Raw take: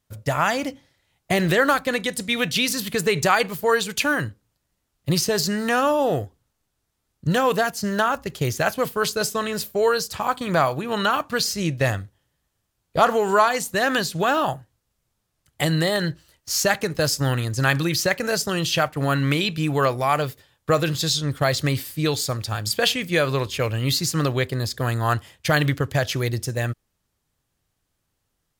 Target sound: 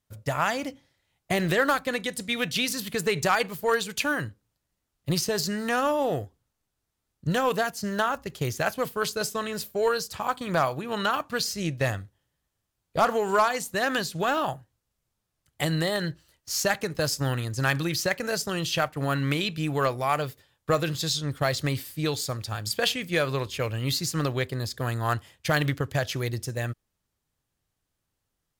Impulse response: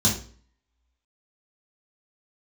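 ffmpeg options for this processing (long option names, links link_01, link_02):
-af "aeval=exprs='0.668*(cos(1*acos(clip(val(0)/0.668,-1,1)))-cos(1*PI/2))+0.106*(cos(3*acos(clip(val(0)/0.668,-1,1)))-cos(3*PI/2))':channel_layout=same,asoftclip=type=hard:threshold=-12.5dB"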